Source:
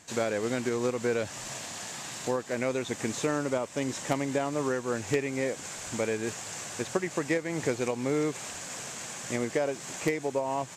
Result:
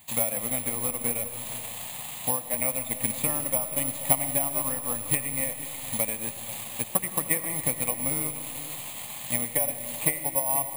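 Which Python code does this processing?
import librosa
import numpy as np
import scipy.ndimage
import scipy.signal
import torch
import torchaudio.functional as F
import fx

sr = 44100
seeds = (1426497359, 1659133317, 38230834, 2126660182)

y = fx.transient(x, sr, attack_db=5, sustain_db=-6)
y = fx.fixed_phaser(y, sr, hz=1500.0, stages=6)
y = y + 10.0 ** (-15.5 / 20.0) * np.pad(y, (int(483 * sr / 1000.0), 0))[:len(y)]
y = fx.rev_freeverb(y, sr, rt60_s=2.7, hf_ratio=0.75, predelay_ms=50, drr_db=9.5)
y = (np.kron(y[::4], np.eye(4)[0]) * 4)[:len(y)]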